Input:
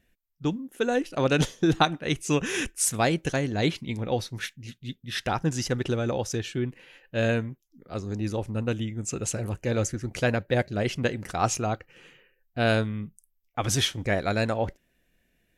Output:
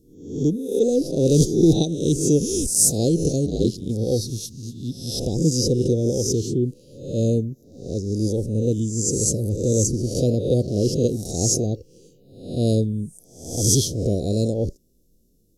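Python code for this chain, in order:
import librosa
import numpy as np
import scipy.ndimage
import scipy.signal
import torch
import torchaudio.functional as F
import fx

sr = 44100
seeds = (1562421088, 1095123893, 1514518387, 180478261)

y = fx.spec_swells(x, sr, rise_s=0.64)
y = fx.ring_mod(y, sr, carrier_hz=46.0, at=(3.45, 3.88), fade=0.02)
y = scipy.signal.sosfilt(scipy.signal.ellip(3, 1.0, 60, [460.0, 4900.0], 'bandstop', fs=sr, output='sos'), y)
y = F.gain(torch.from_numpy(y), 7.0).numpy()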